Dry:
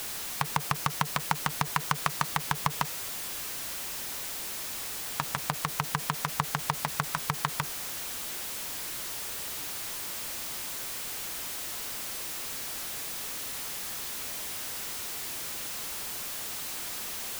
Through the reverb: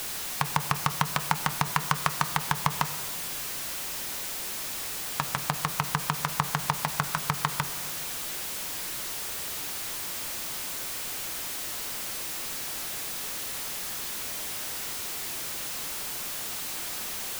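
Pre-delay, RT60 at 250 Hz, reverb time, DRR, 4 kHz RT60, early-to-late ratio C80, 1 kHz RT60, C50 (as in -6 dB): 5 ms, 2.4 s, 1.5 s, 11.0 dB, 1.1 s, 14.5 dB, 1.4 s, 13.5 dB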